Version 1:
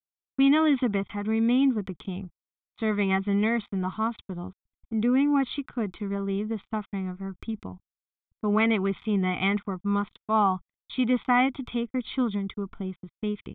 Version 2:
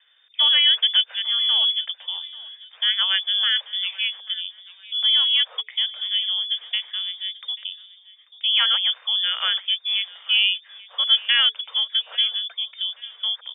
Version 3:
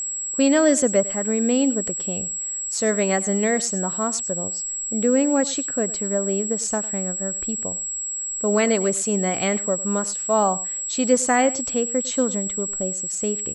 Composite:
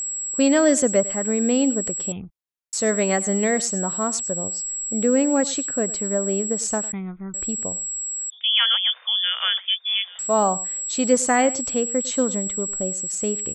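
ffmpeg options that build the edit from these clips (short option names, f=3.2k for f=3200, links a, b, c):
-filter_complex "[0:a]asplit=2[a][b];[2:a]asplit=4[c][d][e][f];[c]atrim=end=2.122[g];[a]atrim=start=2.118:end=2.732[h];[d]atrim=start=2.728:end=6.922[i];[b]atrim=start=6.918:end=7.342[j];[e]atrim=start=7.338:end=8.302[k];[1:a]atrim=start=8.298:end=10.192[l];[f]atrim=start=10.188[m];[g][h]acrossfade=d=0.004:c1=hsin:c2=hsin[n];[n][i]acrossfade=d=0.004:c1=hsin:c2=hsin[o];[o][j]acrossfade=d=0.004:c1=hsin:c2=hsin[p];[p][k]acrossfade=d=0.004:c1=hsin:c2=hsin[q];[q][l]acrossfade=d=0.004:c1=hsin:c2=hsin[r];[r][m]acrossfade=d=0.004:c1=hsin:c2=hsin"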